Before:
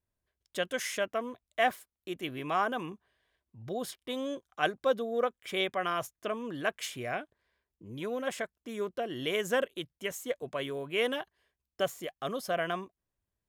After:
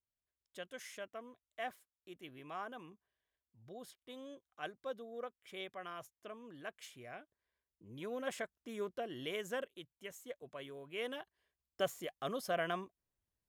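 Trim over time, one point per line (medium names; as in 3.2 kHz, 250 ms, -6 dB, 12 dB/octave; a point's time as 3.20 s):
7.16 s -15 dB
8.27 s -6 dB
8.89 s -6 dB
9.78 s -13 dB
10.84 s -13 dB
11.87 s -4.5 dB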